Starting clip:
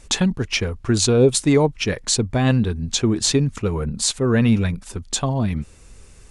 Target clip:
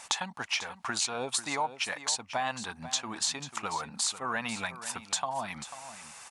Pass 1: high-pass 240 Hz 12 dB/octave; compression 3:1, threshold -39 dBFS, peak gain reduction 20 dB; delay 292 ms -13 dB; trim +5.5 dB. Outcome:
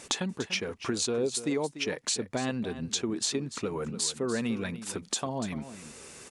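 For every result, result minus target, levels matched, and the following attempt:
echo 200 ms early; 500 Hz band +7.0 dB
high-pass 240 Hz 12 dB/octave; compression 3:1, threshold -39 dBFS, peak gain reduction 20 dB; delay 492 ms -13 dB; trim +5.5 dB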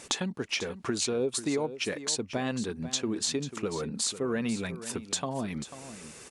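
500 Hz band +7.0 dB
high-pass 240 Hz 12 dB/octave; resonant low shelf 580 Hz -12 dB, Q 3; compression 3:1, threshold -39 dBFS, peak gain reduction 17 dB; delay 492 ms -13 dB; trim +5.5 dB

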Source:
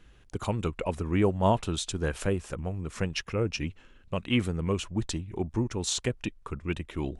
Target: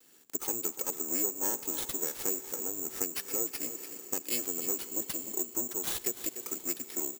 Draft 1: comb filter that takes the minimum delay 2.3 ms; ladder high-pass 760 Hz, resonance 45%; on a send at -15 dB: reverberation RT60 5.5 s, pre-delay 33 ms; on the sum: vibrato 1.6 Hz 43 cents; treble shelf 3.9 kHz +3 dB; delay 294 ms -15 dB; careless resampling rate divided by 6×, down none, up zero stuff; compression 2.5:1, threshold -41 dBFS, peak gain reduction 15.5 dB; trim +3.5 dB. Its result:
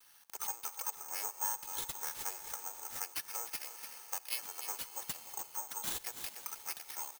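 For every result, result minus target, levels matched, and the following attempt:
250 Hz band -14.5 dB; compression: peak gain reduction +3.5 dB
comb filter that takes the minimum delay 2.3 ms; ladder high-pass 210 Hz, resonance 45%; on a send at -15 dB: reverberation RT60 5.5 s, pre-delay 33 ms; on the sum: vibrato 1.6 Hz 43 cents; treble shelf 3.9 kHz +3 dB; delay 294 ms -15 dB; careless resampling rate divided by 6×, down none, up zero stuff; compression 2.5:1, threshold -41 dBFS, peak gain reduction 17 dB; trim +3.5 dB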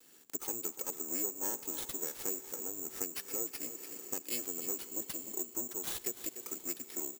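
compression: peak gain reduction +5 dB
comb filter that takes the minimum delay 2.3 ms; ladder high-pass 210 Hz, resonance 45%; on a send at -15 dB: reverberation RT60 5.5 s, pre-delay 33 ms; on the sum: vibrato 1.6 Hz 43 cents; treble shelf 3.9 kHz +3 dB; delay 294 ms -15 dB; careless resampling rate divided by 6×, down none, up zero stuff; compression 2.5:1, threshold -33 dBFS, peak gain reduction 12 dB; trim +3.5 dB

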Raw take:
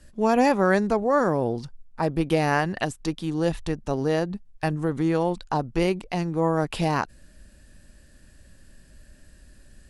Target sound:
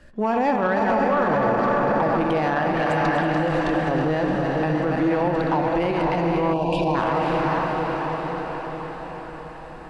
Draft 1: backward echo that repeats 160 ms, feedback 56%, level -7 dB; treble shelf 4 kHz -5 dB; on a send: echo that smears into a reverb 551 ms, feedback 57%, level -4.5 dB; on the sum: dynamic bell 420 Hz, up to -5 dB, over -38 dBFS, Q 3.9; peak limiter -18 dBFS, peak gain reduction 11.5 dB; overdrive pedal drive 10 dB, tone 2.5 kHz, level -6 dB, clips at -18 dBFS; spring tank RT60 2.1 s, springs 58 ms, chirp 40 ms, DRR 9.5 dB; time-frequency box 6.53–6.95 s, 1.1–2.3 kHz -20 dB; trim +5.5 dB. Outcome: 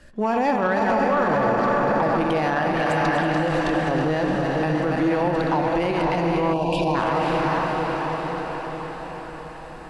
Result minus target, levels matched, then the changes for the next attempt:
8 kHz band +5.0 dB
change: treble shelf 4 kHz -12.5 dB

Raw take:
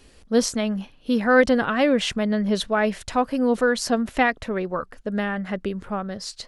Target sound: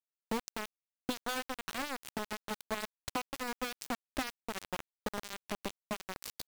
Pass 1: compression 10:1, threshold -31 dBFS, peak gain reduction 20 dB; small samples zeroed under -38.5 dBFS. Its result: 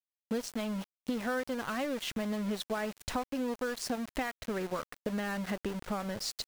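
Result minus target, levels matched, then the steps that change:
small samples zeroed: distortion -16 dB
change: small samples zeroed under -28 dBFS

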